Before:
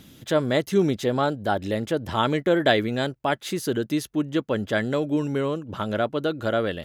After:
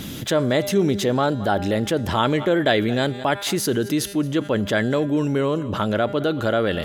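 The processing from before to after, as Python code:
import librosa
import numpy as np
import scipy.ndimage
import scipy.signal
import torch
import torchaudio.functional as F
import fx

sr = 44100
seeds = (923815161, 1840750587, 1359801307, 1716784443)

p1 = fx.comb_fb(x, sr, f0_hz=200.0, decay_s=1.3, harmonics='all', damping=0.0, mix_pct=50)
p2 = p1 + fx.echo_single(p1, sr, ms=221, db=-23.0, dry=0)
p3 = fx.env_flatten(p2, sr, amount_pct=50)
y = p3 * 10.0 ** (5.0 / 20.0)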